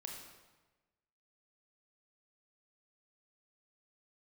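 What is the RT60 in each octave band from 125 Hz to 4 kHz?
1.3 s, 1.3 s, 1.2 s, 1.2 s, 1.1 s, 0.95 s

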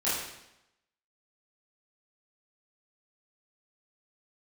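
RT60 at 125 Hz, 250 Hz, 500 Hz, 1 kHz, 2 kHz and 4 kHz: 0.85 s, 0.90 s, 0.85 s, 0.85 s, 0.85 s, 0.80 s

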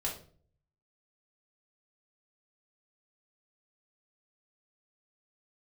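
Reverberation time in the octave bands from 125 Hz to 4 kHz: 0.90 s, 0.65 s, 0.55 s, 0.40 s, 0.35 s, 0.35 s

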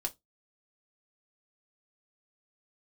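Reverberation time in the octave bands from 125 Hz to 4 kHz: 0.25 s, 0.20 s, 0.15 s, 0.15 s, 0.15 s, 0.15 s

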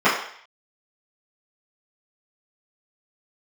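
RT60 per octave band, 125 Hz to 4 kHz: 0.30 s, 0.40 s, 0.55 s, 0.60 s, 0.65 s, 0.65 s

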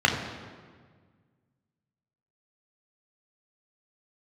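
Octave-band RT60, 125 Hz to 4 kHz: 2.3 s, 2.1 s, 1.7 s, 1.6 s, 1.4 s, 1.1 s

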